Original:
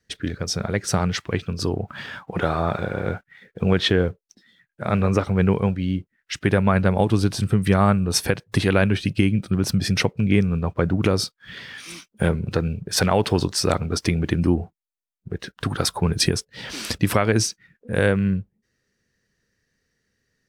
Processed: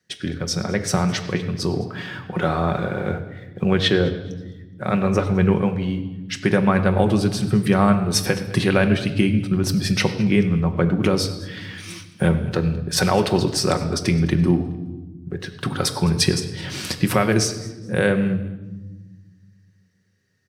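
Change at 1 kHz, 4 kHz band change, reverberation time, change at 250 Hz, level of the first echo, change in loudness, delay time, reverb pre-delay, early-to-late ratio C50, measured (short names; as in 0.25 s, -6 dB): +1.0 dB, +1.0 dB, 1.2 s, +2.5 dB, -20.5 dB, +1.5 dB, 0.21 s, 5 ms, 10.5 dB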